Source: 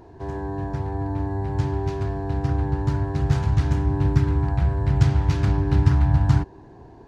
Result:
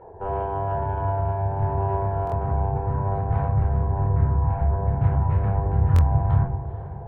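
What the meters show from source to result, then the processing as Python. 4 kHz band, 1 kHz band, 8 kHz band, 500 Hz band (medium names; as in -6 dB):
under -10 dB, +5.5 dB, no reading, +2.5 dB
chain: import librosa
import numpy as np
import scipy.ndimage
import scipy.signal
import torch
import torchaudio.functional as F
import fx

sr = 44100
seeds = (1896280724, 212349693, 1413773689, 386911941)

p1 = fx.envelope_sharpen(x, sr, power=1.5)
p2 = scipy.signal.sosfilt(scipy.signal.butter(4, 2100.0, 'lowpass', fs=sr, output='sos'), p1)
p3 = fx.low_shelf_res(p2, sr, hz=390.0, db=-10.0, q=3.0)
p4 = fx.hum_notches(p3, sr, base_hz=60, count=2)
p5 = fx.cheby_harmonics(p4, sr, harmonics=(8,), levels_db=(-25,), full_scale_db=-16.5)
p6 = p5 + fx.echo_diffused(p5, sr, ms=465, feedback_pct=54, wet_db=-14, dry=0)
p7 = fx.room_shoebox(p6, sr, seeds[0], volume_m3=570.0, walls='furnished', distance_m=4.3)
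y = fx.buffer_glitch(p7, sr, at_s=(2.25, 5.94), block=1024, repeats=2)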